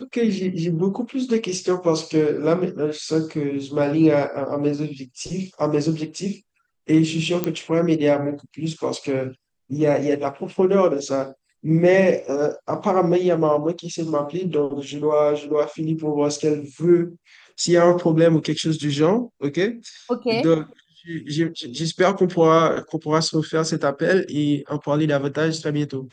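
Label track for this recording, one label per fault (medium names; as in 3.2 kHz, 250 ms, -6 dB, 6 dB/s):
7.440000	7.440000	pop -8 dBFS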